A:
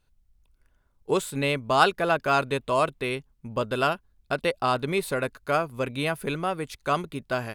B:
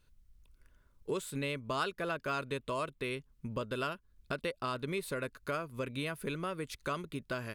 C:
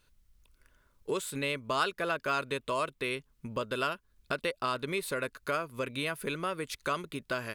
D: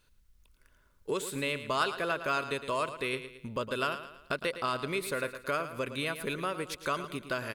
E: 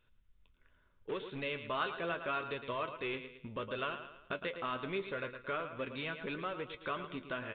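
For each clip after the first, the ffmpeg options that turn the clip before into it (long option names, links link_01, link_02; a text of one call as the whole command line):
ffmpeg -i in.wav -af "equalizer=frequency=770:width_type=o:width=0.3:gain=-13,acompressor=threshold=-40dB:ratio=2.5,volume=1.5dB" out.wav
ffmpeg -i in.wav -af "lowshelf=frequency=290:gain=-8.5,volume=5.5dB" out.wav
ffmpeg -i in.wav -af "aecho=1:1:111|222|333|444:0.266|0.114|0.0492|0.0212" out.wav
ffmpeg -i in.wav -filter_complex "[0:a]asplit=2[link_01][link_02];[link_02]aeval=exprs='(mod(31.6*val(0)+1,2)-1)/31.6':channel_layout=same,volume=-10.5dB[link_03];[link_01][link_03]amix=inputs=2:normalize=0,flanger=delay=8.1:depth=4.2:regen=54:speed=0.75:shape=triangular,aresample=8000,aresample=44100,volume=-2dB" out.wav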